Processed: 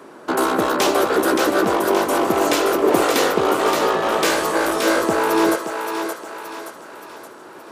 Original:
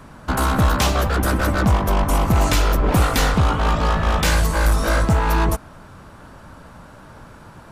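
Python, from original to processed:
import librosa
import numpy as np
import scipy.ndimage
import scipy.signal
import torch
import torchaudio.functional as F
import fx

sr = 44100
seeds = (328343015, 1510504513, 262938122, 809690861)

y = fx.highpass_res(x, sr, hz=370.0, q=4.0)
y = fx.echo_thinned(y, sr, ms=573, feedback_pct=50, hz=540.0, wet_db=-4.5)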